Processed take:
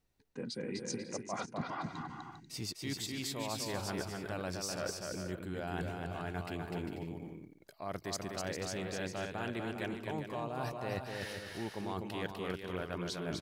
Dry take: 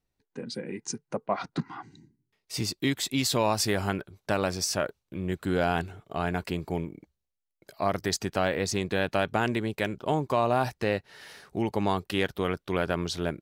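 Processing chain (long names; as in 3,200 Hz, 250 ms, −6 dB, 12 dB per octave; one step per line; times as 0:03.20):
reversed playback
downward compressor 12 to 1, threshold −39 dBFS, peak gain reduction 19 dB
reversed playback
bouncing-ball delay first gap 250 ms, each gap 0.6×, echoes 5
level +2.5 dB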